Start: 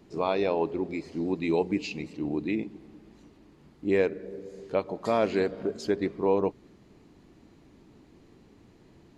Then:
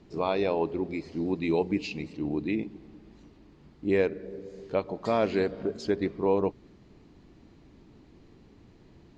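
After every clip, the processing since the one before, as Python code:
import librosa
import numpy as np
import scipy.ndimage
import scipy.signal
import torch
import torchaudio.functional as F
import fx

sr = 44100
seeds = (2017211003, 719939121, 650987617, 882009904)

y = scipy.signal.sosfilt(scipy.signal.cheby1(2, 1.0, 5400.0, 'lowpass', fs=sr, output='sos'), x)
y = fx.low_shelf(y, sr, hz=110.0, db=7.0)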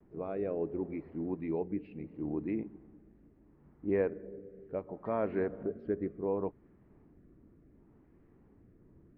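y = fx.rotary(x, sr, hz=0.7)
y = fx.vibrato(y, sr, rate_hz=0.54, depth_cents=24.0)
y = scipy.signal.sosfilt(scipy.signal.butter(4, 1800.0, 'lowpass', fs=sr, output='sos'), y)
y = y * librosa.db_to_amplitude(-5.0)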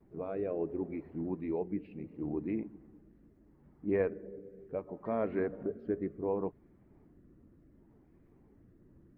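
y = fx.spec_quant(x, sr, step_db=15)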